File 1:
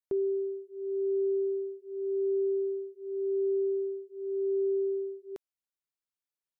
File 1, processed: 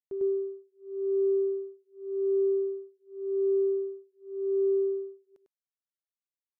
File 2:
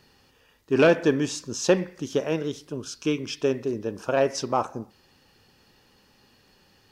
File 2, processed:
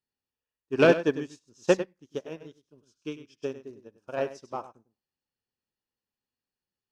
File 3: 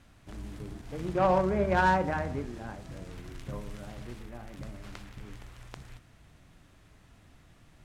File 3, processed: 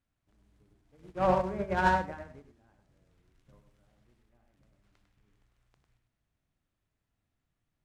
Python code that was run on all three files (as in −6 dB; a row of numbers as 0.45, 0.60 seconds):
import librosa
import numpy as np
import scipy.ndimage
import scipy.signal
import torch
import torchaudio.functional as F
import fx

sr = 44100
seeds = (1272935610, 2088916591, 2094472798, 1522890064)

p1 = x + fx.echo_single(x, sr, ms=100, db=-6.0, dry=0)
y = fx.upward_expand(p1, sr, threshold_db=-38.0, expansion=2.5)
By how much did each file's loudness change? +2.5, −2.5, +1.0 LU